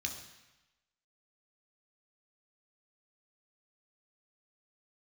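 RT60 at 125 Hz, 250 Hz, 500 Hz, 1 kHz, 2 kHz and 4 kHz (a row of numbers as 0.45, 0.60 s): 1.0, 0.95, 0.95, 1.1, 1.1, 1.0 s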